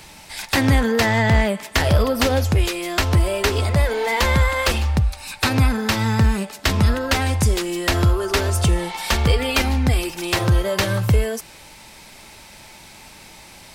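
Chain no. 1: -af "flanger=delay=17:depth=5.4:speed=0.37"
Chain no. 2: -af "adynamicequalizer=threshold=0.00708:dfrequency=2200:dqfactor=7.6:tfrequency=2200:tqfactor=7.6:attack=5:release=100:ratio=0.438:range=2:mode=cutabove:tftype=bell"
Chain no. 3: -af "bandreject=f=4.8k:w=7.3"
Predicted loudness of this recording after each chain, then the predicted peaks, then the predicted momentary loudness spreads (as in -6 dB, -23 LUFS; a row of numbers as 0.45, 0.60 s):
-22.5, -19.5, -19.5 LUFS; -8.5, -8.0, -6.5 dBFS; 5, 5, 5 LU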